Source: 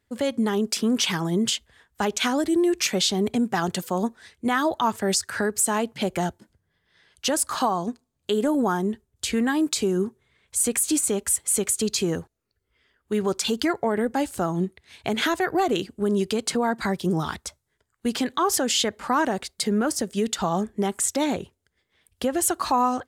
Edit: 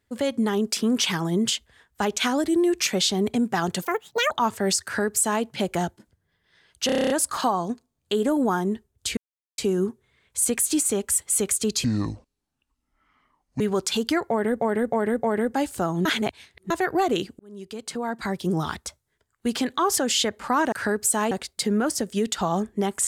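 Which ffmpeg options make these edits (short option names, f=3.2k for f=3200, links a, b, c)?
-filter_complex "[0:a]asplit=23[a][b][c][d][e][f][g][h][i][j][k][l][m][n][o][p][q][r][s][t][u][v][w];[a]atrim=end=3.854[x];[b]atrim=start=3.85:end=4.73,asetpts=PTS-STARTPTS,asetrate=84231,aresample=44100,atrim=end_sample=20318,asetpts=PTS-STARTPTS[y];[c]atrim=start=4.726:end=7.312[z];[d]atrim=start=7.278:end=7.312[aa];[e]atrim=start=7.278:end=7.312[ab];[f]atrim=start=7.278:end=7.312[ac];[g]atrim=start=7.278:end=7.312[ad];[h]atrim=start=7.278:end=7.312[ae];[i]atrim=start=7.278:end=7.312[af];[j]atrim=start=7.278:end=7.312[ag];[k]atrim=start=7.278:end=9.35,asetpts=PTS-STARTPTS,afade=t=out:st=2.068:d=0.004:c=hsin[ah];[l]atrim=start=9.35:end=9.76,asetpts=PTS-STARTPTS,volume=0[ai];[m]atrim=start=9.76:end=12.024,asetpts=PTS-STARTPTS,afade=t=in:d=0.004:c=hsin[aj];[n]atrim=start=12.02:end=13.13,asetpts=PTS-STARTPTS,asetrate=27783,aresample=44100[ak];[o]atrim=start=13.126:end=14.142[al];[p]atrim=start=13.828:end=14.142[am];[q]atrim=start=13.828:end=14.142[an];[r]atrim=start=13.828:end=14.652[ao];[s]atrim=start=14.648:end=15.302,asetpts=PTS-STARTPTS,areverse[ap];[t]atrim=start=15.298:end=15.99,asetpts=PTS-STARTPTS,afade=t=out:st=0.688:d=0.004:c=hsin[aq];[u]atrim=start=15.99:end=19.322,asetpts=PTS-STARTPTS,afade=t=in:d=1.23[ar];[v]atrim=start=5.258:end=5.852[as];[w]atrim=start=19.318[at];[x][y]acrossfade=d=0.004:c1=hsin:c2=hsin[au];[au][z]acrossfade=d=0.004:c1=hsin:c2=hsin[av];[av][aa]acrossfade=d=0.004:c1=hsin:c2=hsin[aw];[aw][ab]acrossfade=d=0.004:c1=hsin:c2=hsin[ax];[ax][ac]acrossfade=d=0.004:c1=hsin:c2=hsin[ay];[ay][ad]acrossfade=d=0.004:c1=hsin:c2=hsin[az];[az][ae]acrossfade=d=0.004:c1=hsin:c2=hsin[ba];[ba][af]acrossfade=d=0.004:c1=hsin:c2=hsin[bb];[bb][ag]acrossfade=d=0.004:c1=hsin:c2=hsin[bc];[ah][ai][aj]concat=n=3:v=0:a=1[bd];[bc][bd]acrossfade=d=0.004:c1=hsin:c2=hsin[be];[be][ak]acrossfade=d=0.004:c1=hsin:c2=hsin[bf];[bf][al]acrossfade=d=0.004:c1=hsin:c2=hsin[bg];[bg][am]acrossfade=d=0.004:c1=hsin:c2=hsin[bh];[bh][an]acrossfade=d=0.004:c1=hsin:c2=hsin[bi];[bi][ao]acrossfade=d=0.004:c1=hsin:c2=hsin[bj];[bj][ap]acrossfade=d=0.004:c1=hsin:c2=hsin[bk];[aq][ar]concat=n=2:v=0:a=1[bl];[bk][bl]acrossfade=d=0.004:c1=hsin:c2=hsin[bm];[bm][as]acrossfade=d=0.004:c1=hsin:c2=hsin[bn];[bn][at]acrossfade=d=0.004:c1=hsin:c2=hsin"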